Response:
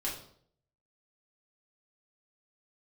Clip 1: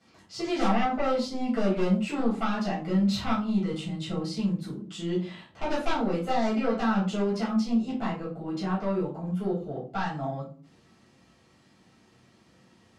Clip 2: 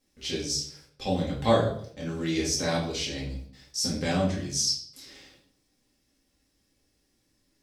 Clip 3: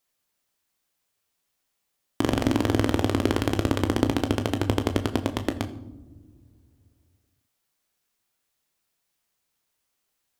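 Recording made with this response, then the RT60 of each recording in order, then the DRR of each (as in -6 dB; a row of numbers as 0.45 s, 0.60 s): 2; 0.40 s, 0.60 s, no single decay rate; -10.0 dB, -5.5 dB, 7.0 dB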